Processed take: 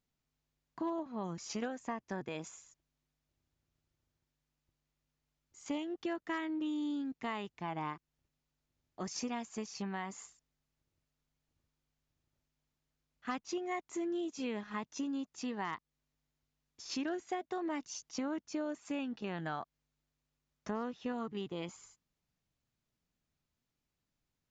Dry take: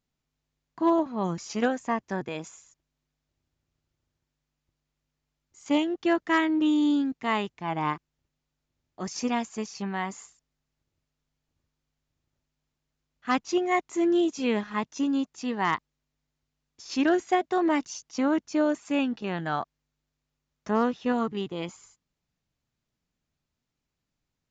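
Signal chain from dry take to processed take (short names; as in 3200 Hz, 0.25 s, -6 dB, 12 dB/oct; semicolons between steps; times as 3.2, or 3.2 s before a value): compressor 4:1, threshold -33 dBFS, peak gain reduction 12 dB; gain -3.5 dB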